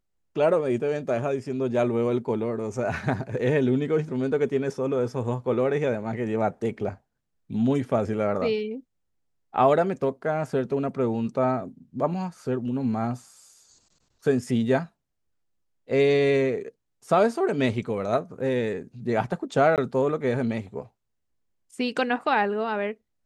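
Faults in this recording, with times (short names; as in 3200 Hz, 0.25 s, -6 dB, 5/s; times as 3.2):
19.76–19.78 gap 18 ms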